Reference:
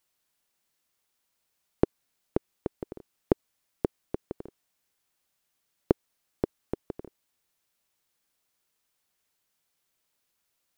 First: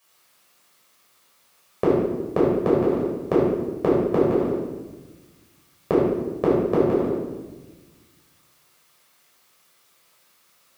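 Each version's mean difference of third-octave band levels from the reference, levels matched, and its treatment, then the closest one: 8.5 dB: high-pass 300 Hz 6 dB/octave; peaking EQ 1.2 kHz +5 dB 0.28 oct; peak limiter -17.5 dBFS, peak gain reduction 9 dB; simulated room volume 780 m³, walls mixed, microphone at 5.8 m; trim +8 dB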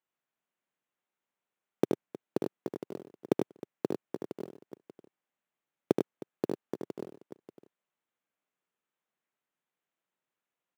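5.5 dB: local Wiener filter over 9 samples; high-pass 140 Hz 24 dB/octave; in parallel at -6 dB: companded quantiser 4-bit; on the sum: multi-tap echo 76/98/313/587 ms -5.5/-6/-17/-10.5 dB; trim -7 dB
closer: second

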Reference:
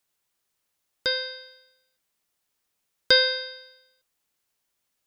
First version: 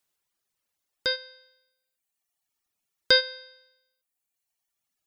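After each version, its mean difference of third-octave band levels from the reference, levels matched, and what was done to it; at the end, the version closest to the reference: 3.0 dB: reverb removal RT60 1.8 s; trim -1 dB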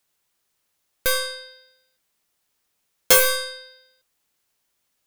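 8.0 dB: tracing distortion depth 0.38 ms; trim +4.5 dB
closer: first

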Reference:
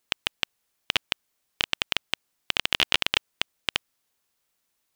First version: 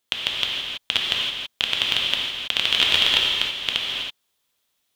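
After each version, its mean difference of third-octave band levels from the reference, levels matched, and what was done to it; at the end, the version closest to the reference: 4.5 dB: peaking EQ 3.4 kHz +8 dB 0.44 oct; gated-style reverb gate 350 ms flat, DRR -2.5 dB; trim -2 dB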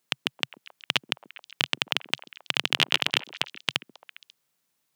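1.0 dB: resonant low shelf 100 Hz -10.5 dB, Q 3; on a send: repeats whose band climbs or falls 135 ms, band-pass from 280 Hz, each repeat 1.4 oct, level -10.5 dB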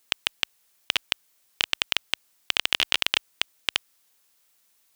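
3.0 dB: tilt EQ +1.5 dB/octave; in parallel at +3 dB: compressor with a negative ratio -28 dBFS, ratio -1; on the sum: trim -6 dB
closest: second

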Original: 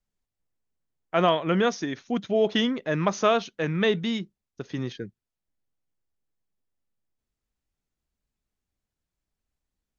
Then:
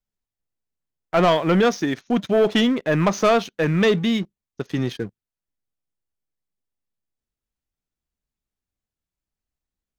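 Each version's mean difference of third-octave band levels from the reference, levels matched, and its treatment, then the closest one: 3.5 dB: dynamic bell 4.9 kHz, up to -3 dB, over -41 dBFS, Q 0.8; waveshaping leveller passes 2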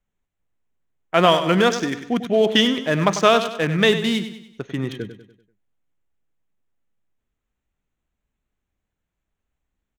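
6.0 dB: local Wiener filter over 9 samples; treble shelf 2.3 kHz +8 dB; feedback delay 97 ms, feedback 45%, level -11 dB; trim +5 dB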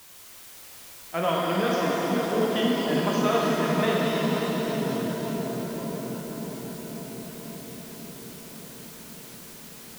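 15.0 dB: added noise white -44 dBFS; on a send: filtered feedback delay 539 ms, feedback 78%, low-pass 960 Hz, level -3 dB; on the sum: pitch-shifted reverb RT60 4 s, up +7 st, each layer -8 dB, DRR -3.5 dB; trim -6.5 dB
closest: first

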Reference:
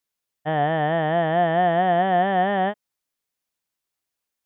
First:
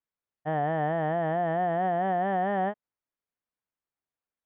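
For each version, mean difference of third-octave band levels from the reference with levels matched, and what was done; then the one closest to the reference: 2.0 dB: low-pass 1.8 kHz 12 dB/octave; peak limiter -14 dBFS, peak gain reduction 3.5 dB; trim -5 dB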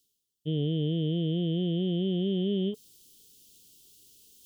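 11.0 dB: Chebyshev band-stop 440–3000 Hz, order 4; reverse; upward compressor, threshold -35 dBFS; reverse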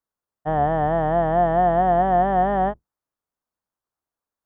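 4.5 dB: octave divider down 2 oct, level -6 dB; resonant high shelf 1.7 kHz -10.5 dB, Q 1.5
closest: first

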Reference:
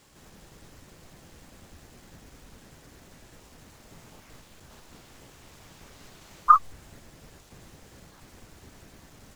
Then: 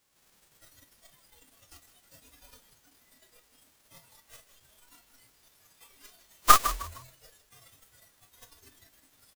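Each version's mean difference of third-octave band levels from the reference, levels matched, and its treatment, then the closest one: 8.5 dB: formants flattened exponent 0.3; spectral noise reduction 14 dB; frequency-shifting echo 154 ms, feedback 30%, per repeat -43 Hz, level -12.5 dB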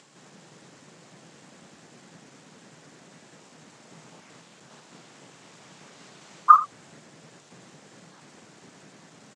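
2.5 dB: elliptic band-pass 150–8100 Hz, stop band 40 dB; upward compressor, threshold -57 dBFS; delay 82 ms -16 dB; trim +2.5 dB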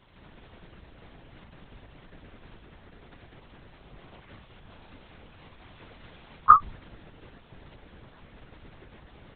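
5.0 dB: feedback comb 73 Hz, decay 0.19 s, harmonics odd, mix 30%; LPC vocoder at 8 kHz whisper; trim +3.5 dB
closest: second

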